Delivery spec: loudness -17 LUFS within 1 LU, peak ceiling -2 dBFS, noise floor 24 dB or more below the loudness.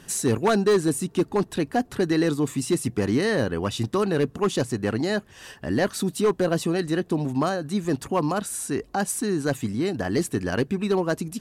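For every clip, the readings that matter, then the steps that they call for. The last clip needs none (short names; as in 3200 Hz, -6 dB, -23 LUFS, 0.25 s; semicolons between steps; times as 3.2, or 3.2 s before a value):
clipped 0.9%; flat tops at -14.5 dBFS; loudness -25.0 LUFS; peak -14.5 dBFS; loudness target -17.0 LUFS
-> clip repair -14.5 dBFS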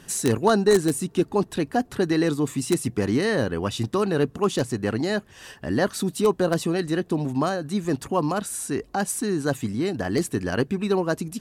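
clipped 0.0%; loudness -24.5 LUFS; peak -5.5 dBFS; loudness target -17.0 LUFS
-> gain +7.5 dB; limiter -2 dBFS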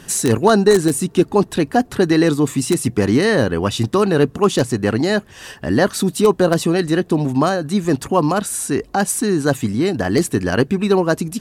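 loudness -17.0 LUFS; peak -2.0 dBFS; noise floor -43 dBFS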